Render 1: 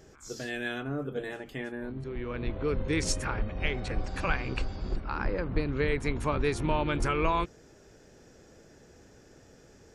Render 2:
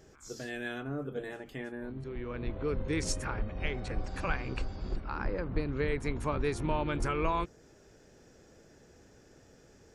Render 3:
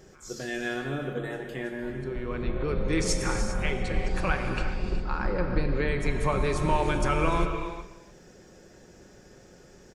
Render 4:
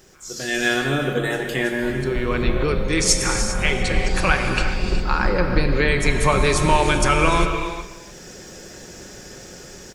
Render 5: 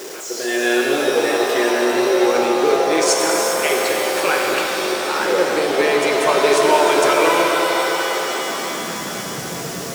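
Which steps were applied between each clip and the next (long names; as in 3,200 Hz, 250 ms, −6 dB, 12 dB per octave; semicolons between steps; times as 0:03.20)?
dynamic equaliser 3,100 Hz, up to −3 dB, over −49 dBFS, Q 0.92; level −3 dB
comb filter 5.5 ms, depth 36%; single-tap delay 296 ms −17.5 dB; convolution reverb, pre-delay 3 ms, DRR 4.5 dB; level +4.5 dB
high-shelf EQ 2,100 Hz +10 dB; automatic gain control gain up to 12.5 dB; background noise pink −58 dBFS; level −2 dB
converter with a step at zero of −26 dBFS; high-pass filter sweep 400 Hz → 140 Hz, 0:08.19–0:09.29; reverb with rising layers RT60 3.7 s, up +7 semitones, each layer −2 dB, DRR 3 dB; level −3 dB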